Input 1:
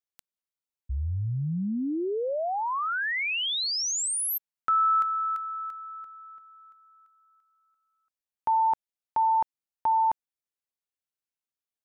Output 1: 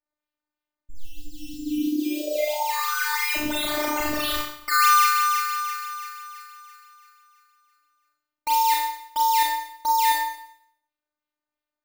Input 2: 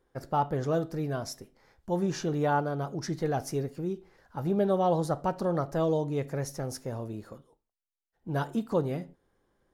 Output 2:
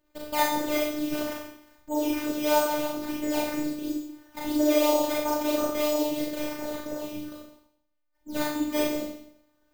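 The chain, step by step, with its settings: decimation with a swept rate 11×, swing 100% 3 Hz; Schroeder reverb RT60 0.68 s, combs from 29 ms, DRR -4.5 dB; robotiser 300 Hz

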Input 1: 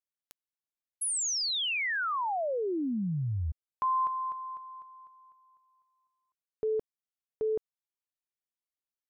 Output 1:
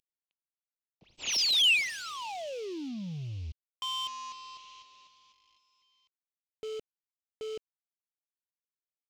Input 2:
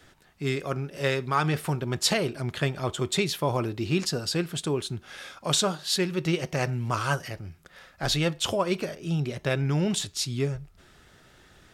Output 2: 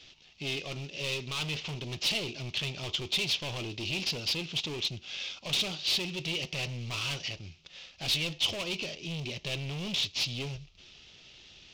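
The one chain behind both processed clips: CVSD 32 kbps; hard clip -29.5 dBFS; resonant high shelf 2100 Hz +9 dB, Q 3; gain -5.5 dB

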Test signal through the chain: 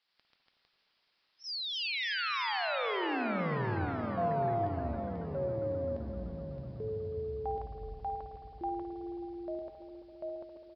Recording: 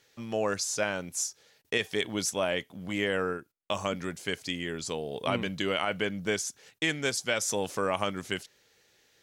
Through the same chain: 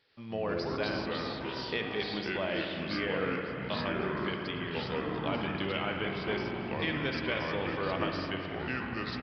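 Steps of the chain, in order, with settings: added noise blue -63 dBFS; spring tank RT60 3.1 s, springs 53 ms, chirp 60 ms, DRR 2.5 dB; echoes that change speed 86 ms, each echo -4 st, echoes 3; on a send: feedback echo 0.546 s, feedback 55%, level -19.5 dB; on the sum: downsampling 11025 Hz; gain -6 dB

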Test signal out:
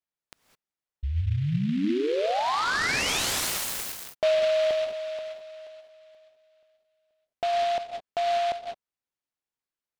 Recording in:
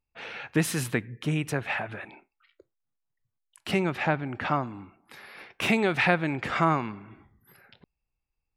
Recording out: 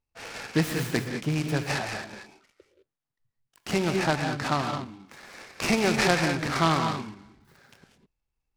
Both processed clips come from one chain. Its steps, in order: high shelf 8100 Hz -8.5 dB; non-linear reverb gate 0.23 s rising, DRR 4 dB; noise-modulated delay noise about 2500 Hz, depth 0.052 ms

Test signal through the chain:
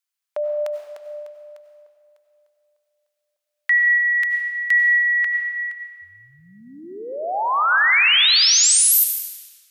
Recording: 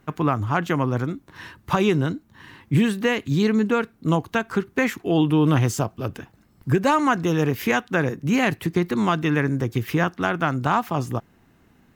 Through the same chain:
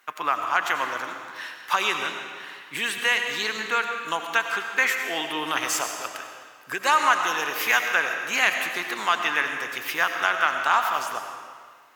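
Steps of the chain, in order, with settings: HPF 1200 Hz 12 dB/oct; digital reverb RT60 1.8 s, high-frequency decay 0.9×, pre-delay 55 ms, DRR 4.5 dB; gain +5 dB

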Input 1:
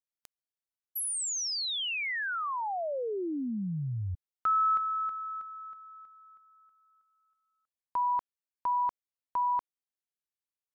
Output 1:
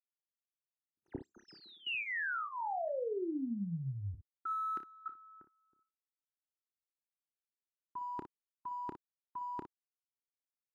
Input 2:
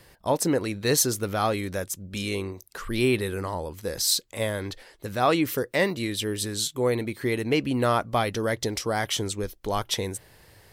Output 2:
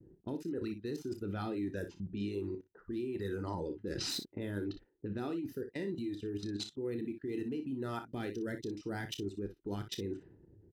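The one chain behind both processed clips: median filter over 5 samples; low-pass opened by the level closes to 380 Hz, open at -25 dBFS; gate with hold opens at -57 dBFS, hold 71 ms, range -24 dB; reverb removal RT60 1.2 s; resonant low shelf 460 Hz +9 dB, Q 3; reverse; compressor 5:1, threshold -31 dBFS; reverse; limiter -27 dBFS; level quantiser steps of 20 dB; notch comb 1100 Hz; on a send: early reflections 30 ms -10.5 dB, 59 ms -10.5 dB; on the sum: gain +3 dB

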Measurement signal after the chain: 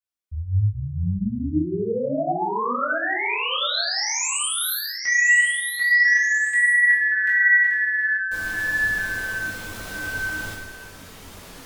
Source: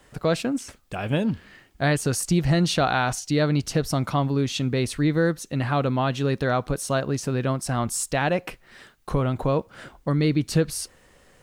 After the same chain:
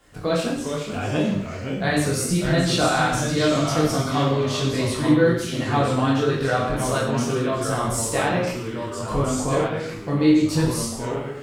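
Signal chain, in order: chorus 1.6 Hz, delay 19.5 ms, depth 3.2 ms; non-linear reverb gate 0.24 s falling, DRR -3 dB; echoes that change speed 0.375 s, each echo -2 st, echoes 2, each echo -6 dB

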